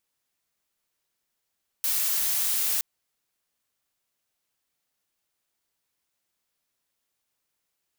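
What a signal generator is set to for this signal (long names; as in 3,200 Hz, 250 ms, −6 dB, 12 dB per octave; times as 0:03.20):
noise blue, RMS −25.5 dBFS 0.97 s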